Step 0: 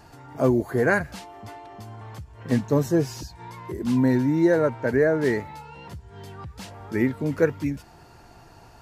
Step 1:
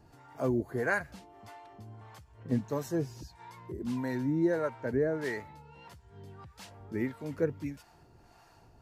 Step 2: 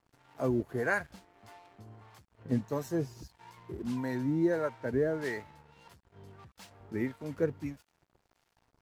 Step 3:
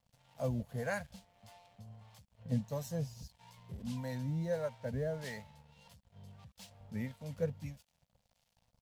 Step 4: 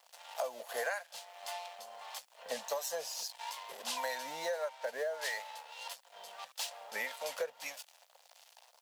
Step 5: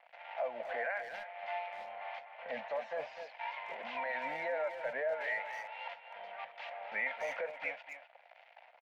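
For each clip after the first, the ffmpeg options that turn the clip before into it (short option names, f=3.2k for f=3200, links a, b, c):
-filter_complex "[0:a]acrossover=split=550[a][b];[a]aeval=exprs='val(0)*(1-0.7/2+0.7/2*cos(2*PI*1.6*n/s))':c=same[c];[b]aeval=exprs='val(0)*(1-0.7/2-0.7/2*cos(2*PI*1.6*n/s))':c=same[d];[c][d]amix=inputs=2:normalize=0,volume=-6.5dB"
-af "aeval=exprs='sgn(val(0))*max(abs(val(0))-0.00168,0)':c=same"
-af "firequalizer=gain_entry='entry(210,0);entry(340,-26);entry(510,-2);entry(1300,-12);entry(3100,0)':delay=0.05:min_phase=1"
-af "highpass=f=630:w=0.5412,highpass=f=630:w=1.3066,bandreject=f=2.2k:w=27,acompressor=threshold=-51dB:ratio=16,volume=18dB"
-filter_complex "[0:a]alimiter=level_in=8.5dB:limit=-24dB:level=0:latency=1:release=16,volume=-8.5dB,highpass=110,equalizer=f=110:t=q:w=4:g=8,equalizer=f=420:t=q:w=4:g=-7,equalizer=f=690:t=q:w=4:g=4,equalizer=f=1.1k:t=q:w=4:g=-7,equalizer=f=2.2k:t=q:w=4:g=9,lowpass=f=2.4k:w=0.5412,lowpass=f=2.4k:w=1.3066,asplit=2[a][b];[b]adelay=250,highpass=300,lowpass=3.4k,asoftclip=type=hard:threshold=-37.5dB,volume=-8dB[c];[a][c]amix=inputs=2:normalize=0,volume=4dB"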